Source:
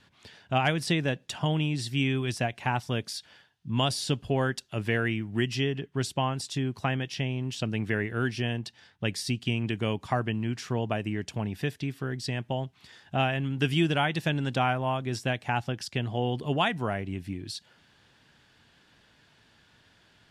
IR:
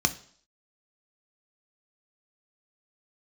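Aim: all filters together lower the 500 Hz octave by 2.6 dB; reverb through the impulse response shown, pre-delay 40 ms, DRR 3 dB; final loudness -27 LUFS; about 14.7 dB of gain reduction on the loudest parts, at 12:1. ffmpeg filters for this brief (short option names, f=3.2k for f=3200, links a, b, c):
-filter_complex "[0:a]equalizer=f=500:t=o:g=-3.5,acompressor=threshold=-37dB:ratio=12,asplit=2[a][b];[1:a]atrim=start_sample=2205,adelay=40[c];[b][c]afir=irnorm=-1:irlink=0,volume=-13.5dB[d];[a][d]amix=inputs=2:normalize=0,volume=12dB"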